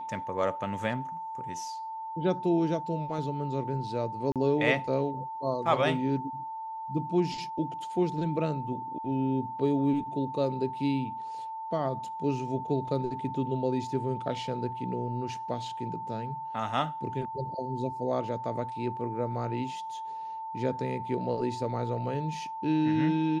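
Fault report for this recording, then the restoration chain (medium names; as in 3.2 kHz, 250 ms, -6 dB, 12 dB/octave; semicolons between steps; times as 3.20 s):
whine 890 Hz -35 dBFS
4.32–4.36 s: dropout 37 ms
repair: band-stop 890 Hz, Q 30; interpolate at 4.32 s, 37 ms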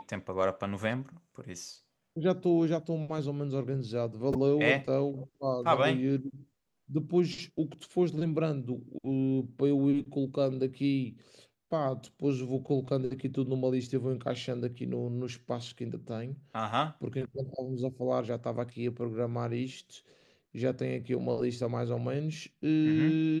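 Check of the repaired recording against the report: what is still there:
nothing left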